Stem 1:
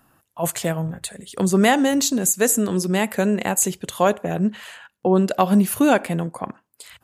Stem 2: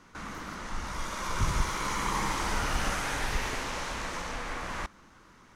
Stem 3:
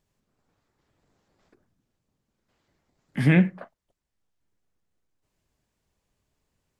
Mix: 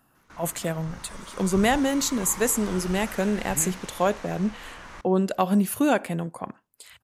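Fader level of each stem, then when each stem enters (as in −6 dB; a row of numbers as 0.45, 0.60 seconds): −5.0, −7.5, −16.5 decibels; 0.00, 0.15, 0.30 seconds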